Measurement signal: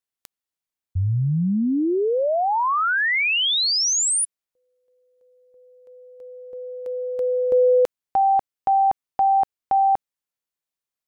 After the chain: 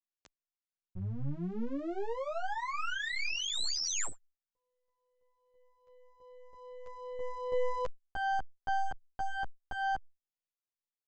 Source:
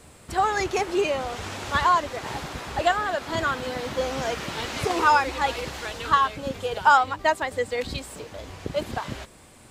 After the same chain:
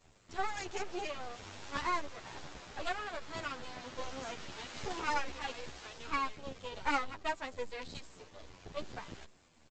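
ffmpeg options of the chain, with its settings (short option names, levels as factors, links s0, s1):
-filter_complex "[0:a]highshelf=f=4800:g=4,aresample=16000,aeval=exprs='max(val(0),0)':c=same,aresample=44100,asplit=2[s0][s1];[s1]adelay=10,afreqshift=-2.5[s2];[s0][s2]amix=inputs=2:normalize=1,volume=0.398"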